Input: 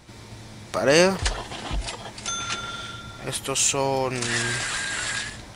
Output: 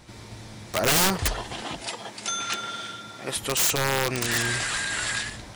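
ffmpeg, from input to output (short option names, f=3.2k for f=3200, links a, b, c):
-filter_complex "[0:a]asettb=1/sr,asplit=3[a][b][c];[a]atrim=end=1.624[d];[b]atrim=start=1.62:end=3.36,asetpts=PTS-STARTPTS,afade=t=in:d=0.004:c=qsin,afade=t=out:st=1.736:d=0.004:c=qsin,highpass=190[e];[c]atrim=start=3.356[f];[d][e]acrossfade=d=0.004:c1=hsin:c2=qsin[g];[g][f]acrossfade=d=0.004:c1=qsin:c2=hsin,aeval=exprs='(mod(5.96*val(0)+1,2)-1)/5.96':c=same"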